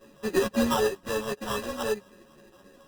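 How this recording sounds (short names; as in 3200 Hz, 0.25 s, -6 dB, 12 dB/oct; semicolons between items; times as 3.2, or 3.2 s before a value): a buzz of ramps at a fixed pitch in blocks of 16 samples; phasing stages 8, 3.8 Hz, lowest notch 510–1700 Hz; aliases and images of a low sample rate 2200 Hz, jitter 0%; a shimmering, thickened sound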